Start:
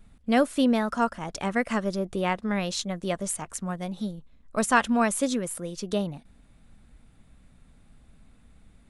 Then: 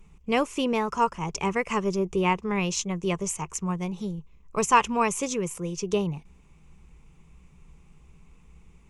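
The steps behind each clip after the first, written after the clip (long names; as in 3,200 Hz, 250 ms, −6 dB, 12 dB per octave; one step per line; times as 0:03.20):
EQ curve with evenly spaced ripples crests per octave 0.75, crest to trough 13 dB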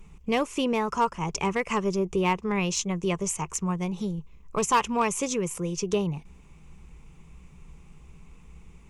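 in parallel at +2 dB: downward compressor 6 to 1, threshold −33 dBFS, peak gain reduction 17.5 dB
on the sum: hard clipping −13 dBFS, distortion −20 dB
level −3 dB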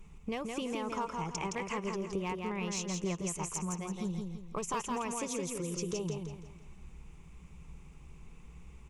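downward compressor, threshold −30 dBFS, peak gain reduction 11.5 dB
on a send: repeating echo 167 ms, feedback 37%, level −4 dB
on the sum: level −4 dB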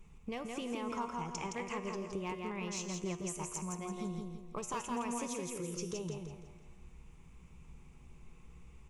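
tuned comb filter 120 Hz, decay 1.1 s, harmonics all, mix 70%
level +5.5 dB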